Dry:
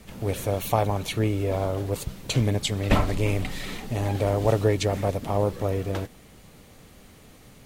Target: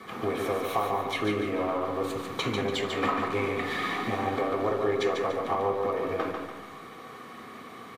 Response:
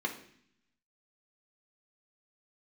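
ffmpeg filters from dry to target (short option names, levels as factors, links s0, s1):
-filter_complex "[0:a]highpass=140,equalizer=f=1300:t=o:w=1.3:g=14,acompressor=threshold=0.0282:ratio=3,aeval=exprs='0.168*(cos(1*acos(clip(val(0)/0.168,-1,1)))-cos(1*PI/2))+0.00596*(cos(8*acos(clip(val(0)/0.168,-1,1)))-cos(8*PI/2))':c=same,aecho=1:1:139|278|417|556|695:0.562|0.225|0.09|0.036|0.0144[s0];[1:a]atrim=start_sample=2205,afade=t=out:st=0.43:d=0.01,atrim=end_sample=19404,asetrate=48510,aresample=44100[s1];[s0][s1]afir=irnorm=-1:irlink=0,asetrate=42336,aresample=44100,volume=0.75"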